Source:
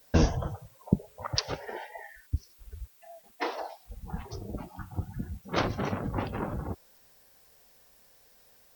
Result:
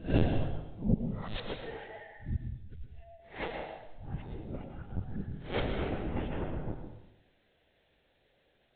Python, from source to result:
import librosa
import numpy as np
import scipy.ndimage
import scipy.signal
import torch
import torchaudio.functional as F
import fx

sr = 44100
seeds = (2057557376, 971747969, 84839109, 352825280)

y = fx.spec_swells(x, sr, rise_s=0.33)
y = fx.peak_eq(y, sr, hz=1100.0, db=-10.5, octaves=0.75)
y = fx.lpc_vocoder(y, sr, seeds[0], excitation='pitch_kept', order=16)
y = fx.rev_plate(y, sr, seeds[1], rt60_s=0.88, hf_ratio=0.95, predelay_ms=95, drr_db=5.0)
y = y * 10.0 ** (-4.0 / 20.0)